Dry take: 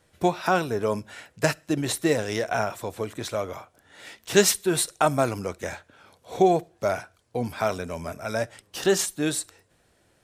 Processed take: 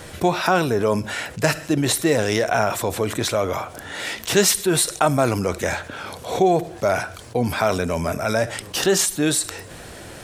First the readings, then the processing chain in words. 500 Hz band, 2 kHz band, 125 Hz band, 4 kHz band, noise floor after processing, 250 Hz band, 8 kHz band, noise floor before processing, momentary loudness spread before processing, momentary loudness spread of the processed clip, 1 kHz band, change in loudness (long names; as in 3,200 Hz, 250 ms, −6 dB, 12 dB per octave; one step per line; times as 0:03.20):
+4.0 dB, +6.0 dB, +6.5 dB, +6.5 dB, −39 dBFS, +5.0 dB, +6.0 dB, −65 dBFS, 14 LU, 11 LU, +4.5 dB, +4.5 dB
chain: envelope flattener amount 50%